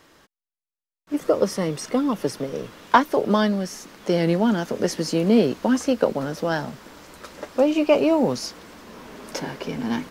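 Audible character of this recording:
background noise floor −91 dBFS
spectral slope −5.0 dB per octave

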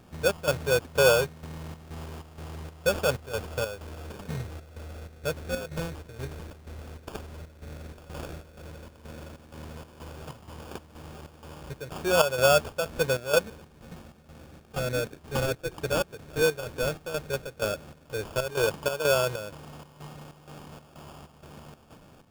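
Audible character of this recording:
chopped level 2.1 Hz, depth 65%, duty 65%
phaser sweep stages 4, 0.11 Hz, lowest notch 800–1,900 Hz
aliases and images of a low sample rate 2,000 Hz, jitter 0%

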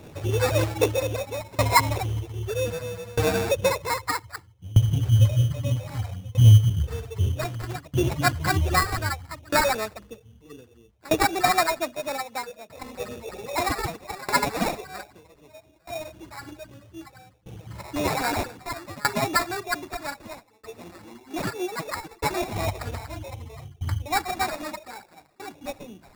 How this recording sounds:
phaser sweep stages 4, 3.9 Hz, lowest notch 200–4,600 Hz
aliases and images of a low sample rate 3,100 Hz, jitter 0%
tremolo saw down 0.63 Hz, depth 95%

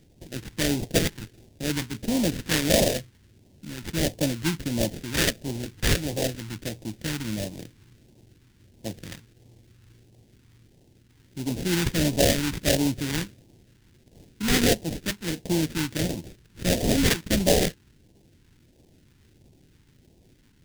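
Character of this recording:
aliases and images of a low sample rate 1,200 Hz, jitter 20%
phaser sweep stages 2, 1.5 Hz, lowest notch 610–1,300 Hz

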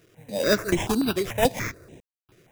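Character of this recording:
aliases and images of a low sample rate 4,300 Hz, jitter 0%
sample-and-hold tremolo, depth 100%
a quantiser's noise floor 10 bits, dither none
notches that jump at a steady rate 6.9 Hz 230–4,600 Hz

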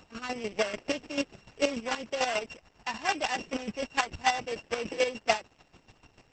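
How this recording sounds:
a buzz of ramps at a fixed pitch in blocks of 16 samples
chopped level 6.8 Hz, depth 65%, duty 25%
Opus

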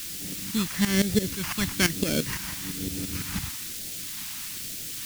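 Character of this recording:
aliases and images of a low sample rate 3,800 Hz, jitter 0%
tremolo saw up 5.9 Hz, depth 85%
a quantiser's noise floor 8 bits, dither triangular
phaser sweep stages 2, 1.1 Hz, lowest notch 450–1,000 Hz

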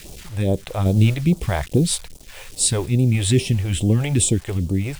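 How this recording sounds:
a quantiser's noise floor 8 bits, dither none
sample-and-hold tremolo
phaser sweep stages 2, 2.4 Hz, lowest notch 200–1,800 Hz

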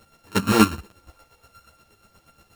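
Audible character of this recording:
a buzz of ramps at a fixed pitch in blocks of 32 samples
chopped level 8.4 Hz, depth 60%, duty 30%
a quantiser's noise floor 12 bits, dither none
a shimmering, thickened sound

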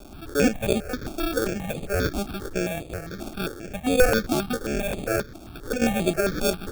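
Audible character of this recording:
a quantiser's noise floor 8 bits, dither triangular
sample-and-hold tremolo 4.3 Hz
aliases and images of a low sample rate 1,000 Hz, jitter 0%
notches that jump at a steady rate 7.5 Hz 480–5,500 Hz

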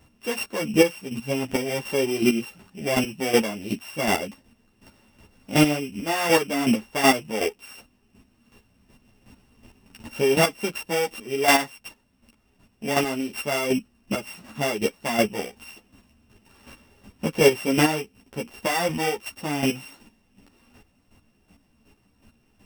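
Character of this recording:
a buzz of ramps at a fixed pitch in blocks of 16 samples
chopped level 2.7 Hz, depth 65%, duty 20%
a shimmering, thickened sound

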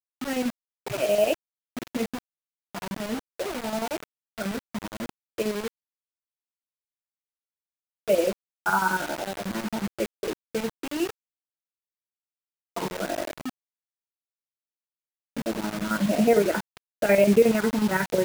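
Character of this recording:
phaser sweep stages 4, 1 Hz, lowest notch 560–1,200 Hz
chopped level 11 Hz, depth 60%, duty 65%
a quantiser's noise floor 6 bits, dither none

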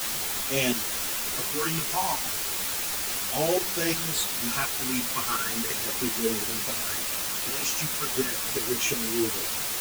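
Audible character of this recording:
phaser sweep stages 8, 0.36 Hz, lowest notch 480–1,400 Hz
tremolo saw up 2.8 Hz, depth 80%
a quantiser's noise floor 6 bits, dither triangular
a shimmering, thickened sound

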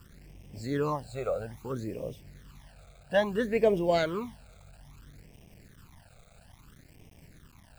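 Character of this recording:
a quantiser's noise floor 10 bits, dither none
phaser sweep stages 12, 0.6 Hz, lowest notch 300–1,400 Hz

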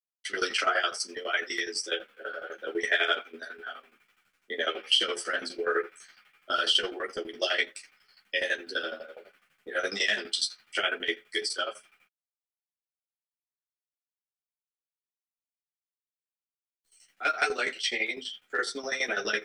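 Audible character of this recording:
a quantiser's noise floor 12 bits, dither none
tremolo saw down 12 Hz, depth 90%
a shimmering, thickened sound

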